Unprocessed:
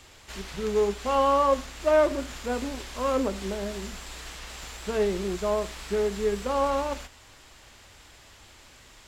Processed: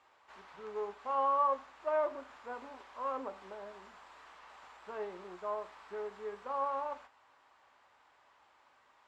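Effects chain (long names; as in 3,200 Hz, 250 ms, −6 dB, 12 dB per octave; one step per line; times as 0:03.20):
resonant band-pass 990 Hz, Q 1.9
convolution reverb, pre-delay 3 ms, DRR 10.5 dB
level −5.5 dB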